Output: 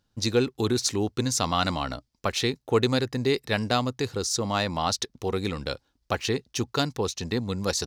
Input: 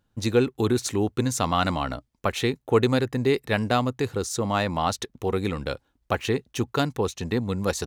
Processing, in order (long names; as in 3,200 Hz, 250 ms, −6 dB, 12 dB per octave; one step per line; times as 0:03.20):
parametric band 5,000 Hz +11 dB 0.88 octaves
level −2.5 dB